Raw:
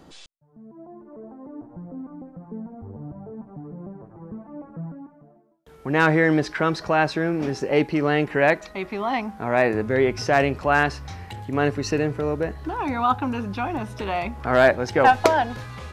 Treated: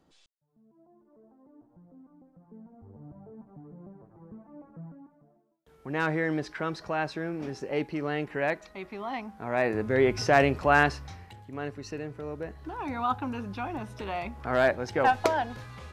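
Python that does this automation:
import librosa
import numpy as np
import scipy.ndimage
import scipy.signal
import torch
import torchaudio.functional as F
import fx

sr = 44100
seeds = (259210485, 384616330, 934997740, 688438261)

y = fx.gain(x, sr, db=fx.line((2.2, -17.5), (3.14, -10.0), (9.31, -10.0), (10.13, -2.0), (10.86, -2.0), (11.42, -14.0), (12.06, -14.0), (12.97, -7.5)))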